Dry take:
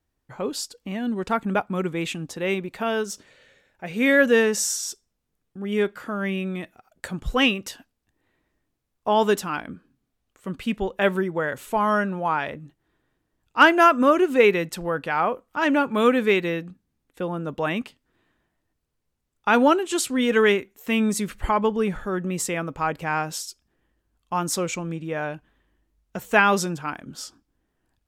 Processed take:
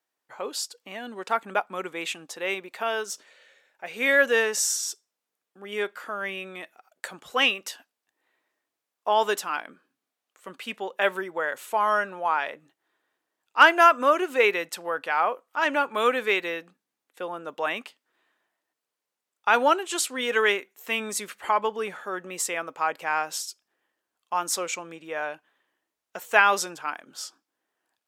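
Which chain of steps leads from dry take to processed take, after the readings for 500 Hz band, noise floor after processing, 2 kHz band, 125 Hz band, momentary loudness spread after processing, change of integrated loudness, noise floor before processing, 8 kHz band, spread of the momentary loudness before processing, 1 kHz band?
-4.5 dB, under -85 dBFS, 0.0 dB, under -15 dB, 17 LU, -2.0 dB, -77 dBFS, 0.0 dB, 16 LU, -0.5 dB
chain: high-pass 570 Hz 12 dB/octave

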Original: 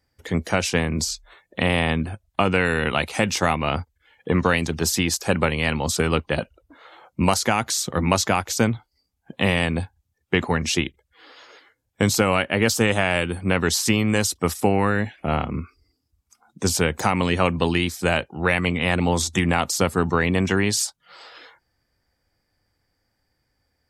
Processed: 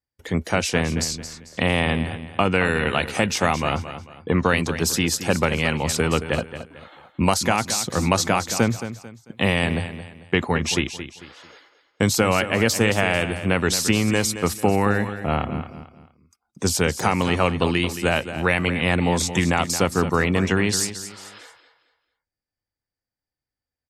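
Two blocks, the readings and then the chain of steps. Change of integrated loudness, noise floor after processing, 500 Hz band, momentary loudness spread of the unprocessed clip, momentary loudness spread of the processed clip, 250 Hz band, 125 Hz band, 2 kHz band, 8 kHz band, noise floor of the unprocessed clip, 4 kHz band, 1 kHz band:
+0.5 dB, under -85 dBFS, +0.5 dB, 7 LU, 12 LU, +0.5 dB, +0.5 dB, +0.5 dB, +0.5 dB, -74 dBFS, +0.5 dB, +0.5 dB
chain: gate -53 dBFS, range -20 dB; feedback delay 222 ms, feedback 33%, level -11.5 dB

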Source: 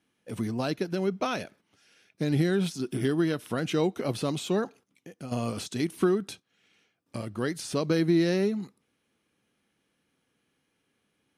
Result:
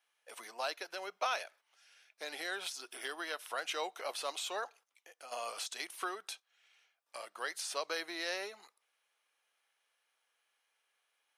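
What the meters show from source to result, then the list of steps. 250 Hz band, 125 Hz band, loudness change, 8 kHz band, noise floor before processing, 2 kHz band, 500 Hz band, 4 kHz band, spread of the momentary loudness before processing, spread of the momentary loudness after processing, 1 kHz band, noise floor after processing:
-27.5 dB, under -40 dB, -11.0 dB, -2.0 dB, -77 dBFS, -2.0 dB, -14.0 dB, -2.0 dB, 13 LU, 12 LU, -2.5 dB, -82 dBFS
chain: high-pass 660 Hz 24 dB/octave; trim -2 dB

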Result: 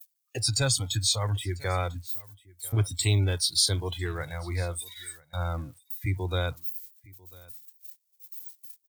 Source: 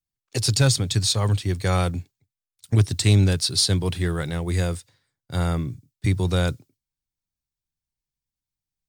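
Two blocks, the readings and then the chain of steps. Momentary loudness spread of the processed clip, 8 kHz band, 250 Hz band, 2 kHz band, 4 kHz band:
20 LU, -2.0 dB, -12.0 dB, -4.0 dB, -3.0 dB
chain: zero-crossing glitches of -17.5 dBFS; spectral noise reduction 23 dB; gate -40 dBFS, range -26 dB; peaking EQ 190 Hz -14 dB 0.79 oct; delay 996 ms -24 dB; trim -4 dB

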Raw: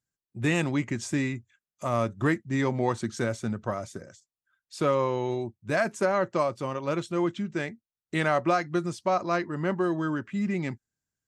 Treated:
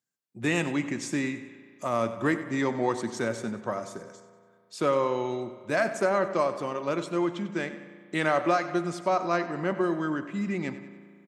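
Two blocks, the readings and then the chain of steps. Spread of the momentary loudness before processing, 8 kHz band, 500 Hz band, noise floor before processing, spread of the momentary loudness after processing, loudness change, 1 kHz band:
8 LU, 0.0 dB, +0.5 dB, under -85 dBFS, 11 LU, 0.0 dB, +0.5 dB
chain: high-pass 190 Hz 12 dB/octave; feedback delay 95 ms, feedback 44%, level -14 dB; spring tank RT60 2.2 s, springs 35 ms, chirp 70 ms, DRR 13 dB

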